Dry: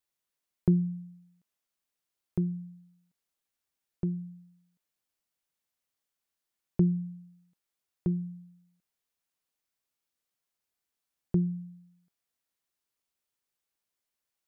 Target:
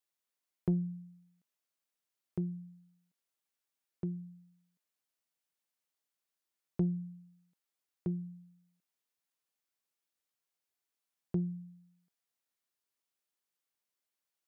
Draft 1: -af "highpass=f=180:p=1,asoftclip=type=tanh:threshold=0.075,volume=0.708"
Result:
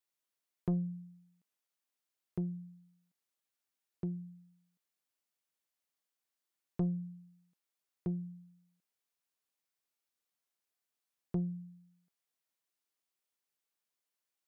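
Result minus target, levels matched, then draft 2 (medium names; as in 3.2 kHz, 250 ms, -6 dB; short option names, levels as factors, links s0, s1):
saturation: distortion +9 dB
-af "highpass=f=180:p=1,asoftclip=type=tanh:threshold=0.158,volume=0.708"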